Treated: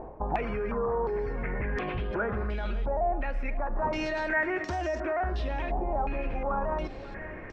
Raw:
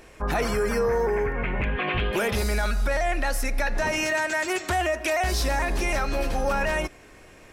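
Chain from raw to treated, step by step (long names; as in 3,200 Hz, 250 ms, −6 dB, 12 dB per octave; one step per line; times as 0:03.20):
tilt shelving filter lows +8.5 dB, about 1,500 Hz
reversed playback
downward compressor 6 to 1, threshold −25 dBFS, peak gain reduction 12 dB
reversed playback
brickwall limiter −25 dBFS, peak gain reduction 9 dB
on a send: single-tap delay 538 ms −12.5 dB
on the sum: low-pass on a step sequencer 2.8 Hz 850–5,500 Hz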